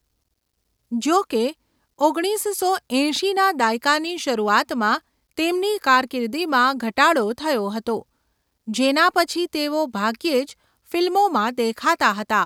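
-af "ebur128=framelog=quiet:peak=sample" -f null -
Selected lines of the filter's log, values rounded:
Integrated loudness:
  I:         -20.6 LUFS
  Threshold: -30.9 LUFS
Loudness range:
  LRA:         2.2 LU
  Threshold: -41.0 LUFS
  LRA low:   -22.3 LUFS
  LRA high:  -20.0 LUFS
Sample peak:
  Peak:       -2.5 dBFS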